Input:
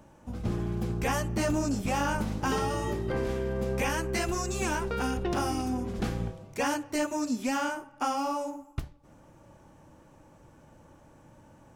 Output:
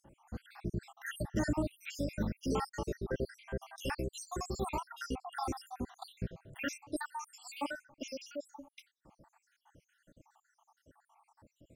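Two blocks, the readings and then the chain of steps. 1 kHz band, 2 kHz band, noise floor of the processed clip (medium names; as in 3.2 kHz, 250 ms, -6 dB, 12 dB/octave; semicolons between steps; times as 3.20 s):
-10.5 dB, -9.0 dB, -83 dBFS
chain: random holes in the spectrogram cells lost 77%; trim -2.5 dB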